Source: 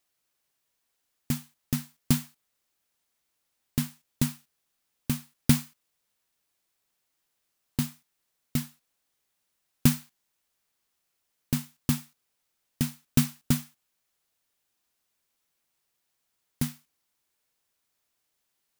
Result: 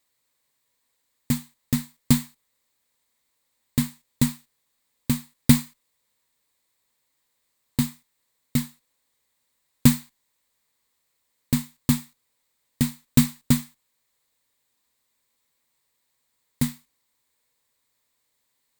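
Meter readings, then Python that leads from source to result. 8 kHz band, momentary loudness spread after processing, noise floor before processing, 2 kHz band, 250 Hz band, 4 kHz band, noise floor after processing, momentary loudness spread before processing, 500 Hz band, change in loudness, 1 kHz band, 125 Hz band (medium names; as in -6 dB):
+4.0 dB, 10 LU, -79 dBFS, +4.0 dB, +6.0 dB, +4.0 dB, -75 dBFS, 10 LU, +3.5 dB, +5.0 dB, +4.5 dB, +4.0 dB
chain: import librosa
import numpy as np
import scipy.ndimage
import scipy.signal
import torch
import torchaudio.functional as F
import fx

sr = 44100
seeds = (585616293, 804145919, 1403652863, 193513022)

y = fx.ripple_eq(x, sr, per_octave=1.0, db=7)
y = y * 10.0 ** (3.5 / 20.0)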